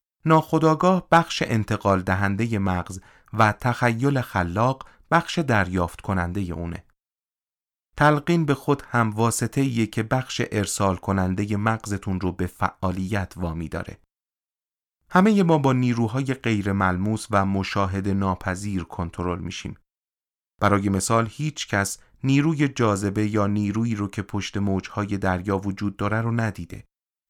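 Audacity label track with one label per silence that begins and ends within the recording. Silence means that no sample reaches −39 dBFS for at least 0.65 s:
6.790000	7.980000	silence
13.950000	15.110000	silence
19.740000	20.620000	silence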